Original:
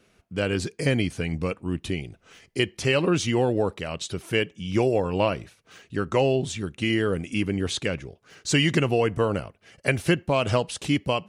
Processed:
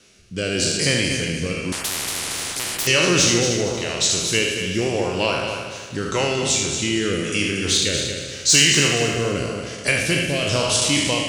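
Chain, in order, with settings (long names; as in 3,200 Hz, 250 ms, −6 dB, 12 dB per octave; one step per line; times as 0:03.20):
peak hold with a decay on every bin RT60 0.81 s
parametric band 6,000 Hz +15 dB 2.1 octaves
in parallel at 0 dB: downward compressor, threshold −31 dBFS, peak gain reduction 20.5 dB
on the sum: soft clipping −3.5 dBFS, distortion −23 dB
rotating-speaker cabinet horn 0.9 Hz
on a send: echo machine with several playback heads 77 ms, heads first and third, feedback 51%, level −8 dB
0:01.72–0:02.87: on the sum: every bin compressed towards the loudest bin 10 to 1
level −1.5 dB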